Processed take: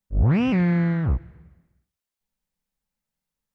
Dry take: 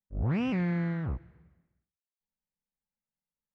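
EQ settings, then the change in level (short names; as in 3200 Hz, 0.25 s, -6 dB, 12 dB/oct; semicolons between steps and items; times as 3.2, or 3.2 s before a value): low shelf 99 Hz +7 dB; +7.5 dB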